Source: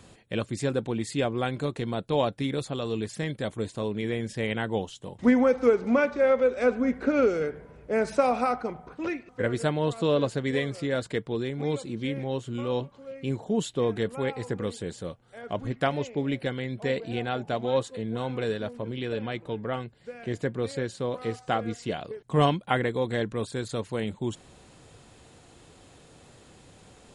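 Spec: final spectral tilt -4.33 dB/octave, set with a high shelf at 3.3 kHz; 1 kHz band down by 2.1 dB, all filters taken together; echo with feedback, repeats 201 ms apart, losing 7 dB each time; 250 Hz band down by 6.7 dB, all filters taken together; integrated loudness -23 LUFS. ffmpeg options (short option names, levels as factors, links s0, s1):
-af "equalizer=f=250:t=o:g=-8,equalizer=f=1000:t=o:g=-3.5,highshelf=f=3300:g=9,aecho=1:1:201|402|603|804|1005:0.447|0.201|0.0905|0.0407|0.0183,volume=2.24"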